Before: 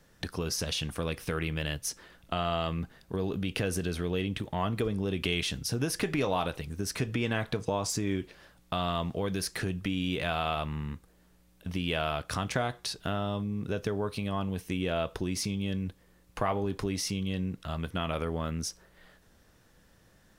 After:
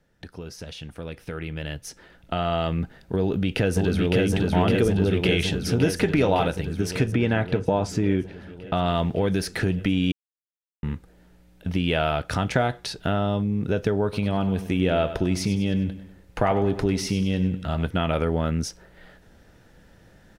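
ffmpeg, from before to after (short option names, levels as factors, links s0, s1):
-filter_complex "[0:a]asplit=2[s0][s1];[s1]afade=t=in:st=3.2:d=0.01,afade=t=out:st=4.23:d=0.01,aecho=0:1:560|1120|1680|2240|2800|3360|3920|4480|5040|5600|6160|6720:0.841395|0.631046|0.473285|0.354964|0.266223|0.199667|0.14975|0.112313|0.0842345|0.0631759|0.0473819|0.0355364[s2];[s0][s2]amix=inputs=2:normalize=0,asettb=1/sr,asplit=3[s3][s4][s5];[s3]atrim=end=7.124[s6];[s4]atrim=start=7.12:end=8.86,asetpts=PTS-STARTPTS,afade=t=in:d=0.004:c=qsin,afade=t=out:st=1.736:d=0.004:c=qsin,highshelf=f=3700:g=-8.5[s7];[s5]atrim=start=8.856[s8];[s6][s7]acrossfade=d=0.004:c1=hsin:c2=qsin[s9];[s9][s8]acrossfade=d=0.004:c1=qsin:c2=hsin,asettb=1/sr,asplit=3[s10][s11][s12];[s10]atrim=end=14.034[s13];[s11]atrim=start=14.03:end=17.87,asetpts=PTS-STARTPTS,afade=t=in:d=0.004:c=qsin,afade=t=out:st=3.836:d=0.004:c=qsin,aecho=1:1:98|196|294|392:0.237|0.107|0.048|0.0216,atrim=end_sample=169344[s14];[s12]atrim=start=17.866[s15];[s13][s14]acrossfade=d=0.004:c1=hsin:c2=qsin[s16];[s16][s15]acrossfade=d=0.004:c1=qsin:c2=hsin,asplit=3[s17][s18][s19];[s17]atrim=end=10.12,asetpts=PTS-STARTPTS,afade=t=out:st=10.116:d=0.004:c=hsin[s20];[s18]atrim=start=10.12:end=10.83,asetpts=PTS-STARTPTS,volume=0[s21];[s19]atrim=start=10.83,asetpts=PTS-STARTPTS,afade=t=in:d=0.004:c=hsin[s22];[s20][s21][s22]concat=n=3:v=0:a=1,highshelf=f=3900:g=-10.5,bandreject=f=1100:w=5.6,dynaudnorm=f=460:g=9:m=4.73,volume=0.631"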